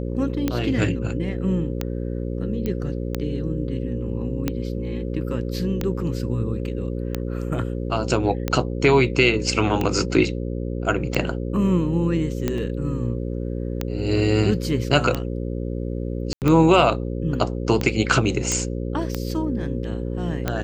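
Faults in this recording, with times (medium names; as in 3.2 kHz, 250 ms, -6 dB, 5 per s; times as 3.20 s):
buzz 60 Hz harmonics 9 -27 dBFS
tick 45 rpm -9 dBFS
2.66 s: pop -14 dBFS
12.58 s: dropout 2.1 ms
16.33–16.42 s: dropout 88 ms
18.52 s: pop -8 dBFS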